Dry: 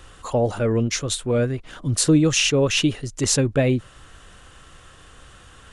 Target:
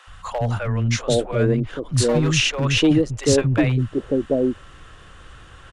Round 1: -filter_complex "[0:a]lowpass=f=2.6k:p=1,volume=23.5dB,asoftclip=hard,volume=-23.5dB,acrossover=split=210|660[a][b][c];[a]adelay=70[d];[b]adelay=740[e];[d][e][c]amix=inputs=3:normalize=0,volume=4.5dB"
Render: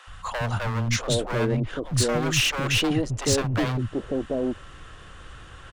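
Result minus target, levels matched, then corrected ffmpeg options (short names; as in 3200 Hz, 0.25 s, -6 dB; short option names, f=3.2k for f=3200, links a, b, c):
overloaded stage: distortion +12 dB
-filter_complex "[0:a]lowpass=f=2.6k:p=1,volume=13dB,asoftclip=hard,volume=-13dB,acrossover=split=210|660[a][b][c];[a]adelay=70[d];[b]adelay=740[e];[d][e][c]amix=inputs=3:normalize=0,volume=4.5dB"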